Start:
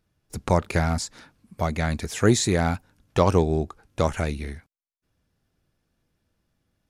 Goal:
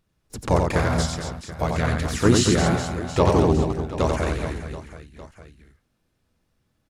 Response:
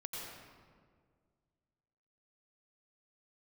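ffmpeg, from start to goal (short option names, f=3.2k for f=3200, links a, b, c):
-filter_complex "[0:a]asplit=2[a][b];[b]asetrate=33038,aresample=44100,atempo=1.33484,volume=-3dB[c];[a][c]amix=inputs=2:normalize=0,aecho=1:1:90|225|427.5|731.2|1187:0.631|0.398|0.251|0.158|0.1,volume=-1dB"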